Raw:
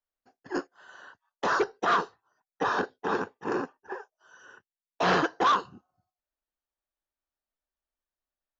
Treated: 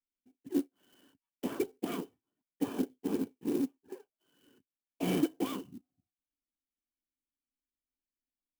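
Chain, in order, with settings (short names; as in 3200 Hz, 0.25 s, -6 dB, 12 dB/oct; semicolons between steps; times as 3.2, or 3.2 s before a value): dynamic EQ 700 Hz, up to +5 dB, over -40 dBFS, Q 1.3; vocal tract filter i; clock jitter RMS 0.043 ms; gain +7 dB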